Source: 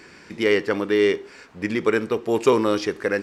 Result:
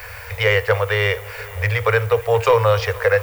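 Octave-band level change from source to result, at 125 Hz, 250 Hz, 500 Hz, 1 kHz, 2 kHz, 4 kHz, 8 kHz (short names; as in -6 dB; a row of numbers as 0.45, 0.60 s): +15.5 dB, under -15 dB, +3.0 dB, +7.0 dB, +7.5 dB, +4.5 dB, +1.5 dB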